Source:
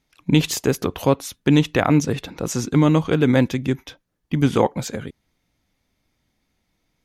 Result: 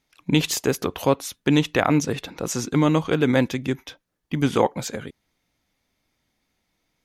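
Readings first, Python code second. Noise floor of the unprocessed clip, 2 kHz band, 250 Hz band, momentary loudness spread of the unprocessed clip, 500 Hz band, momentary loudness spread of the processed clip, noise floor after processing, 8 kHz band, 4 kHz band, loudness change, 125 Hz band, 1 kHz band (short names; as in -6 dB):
-72 dBFS, 0.0 dB, -3.0 dB, 11 LU, -1.5 dB, 11 LU, -75 dBFS, 0.0 dB, 0.0 dB, -2.5 dB, -5.0 dB, -0.5 dB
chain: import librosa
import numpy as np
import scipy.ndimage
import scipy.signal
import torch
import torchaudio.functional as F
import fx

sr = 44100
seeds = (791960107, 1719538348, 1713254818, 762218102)

y = fx.low_shelf(x, sr, hz=260.0, db=-6.5)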